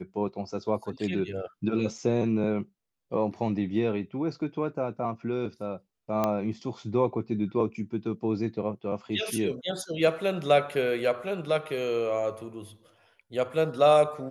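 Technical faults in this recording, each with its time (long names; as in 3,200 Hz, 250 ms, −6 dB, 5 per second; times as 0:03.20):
0:01.98: drop-out 4.1 ms
0:06.24: click −13 dBFS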